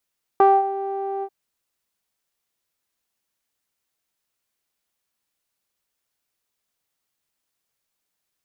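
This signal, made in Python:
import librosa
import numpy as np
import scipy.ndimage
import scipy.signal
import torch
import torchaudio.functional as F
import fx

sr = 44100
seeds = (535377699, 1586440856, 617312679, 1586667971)

y = fx.sub_voice(sr, note=67, wave='saw', cutoff_hz=680.0, q=6.4, env_oct=0.5, env_s=0.34, attack_ms=1.5, decay_s=0.22, sustain_db=-14.5, release_s=0.06, note_s=0.83, slope=12)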